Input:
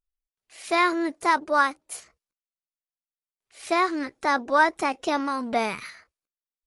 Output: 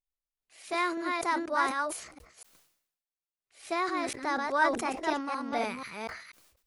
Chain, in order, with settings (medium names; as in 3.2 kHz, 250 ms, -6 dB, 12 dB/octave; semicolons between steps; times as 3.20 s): chunks repeated in reverse 243 ms, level -3 dB; decay stretcher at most 82 dB/s; trim -8.5 dB